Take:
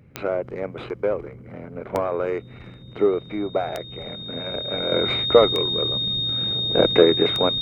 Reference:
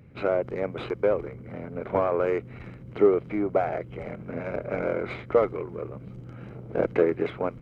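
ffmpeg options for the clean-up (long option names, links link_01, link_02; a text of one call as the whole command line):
ffmpeg -i in.wav -af "adeclick=threshold=4,bandreject=frequency=3700:width=30,asetnsamples=nb_out_samples=441:pad=0,asendcmd='4.92 volume volume -7dB',volume=0dB" out.wav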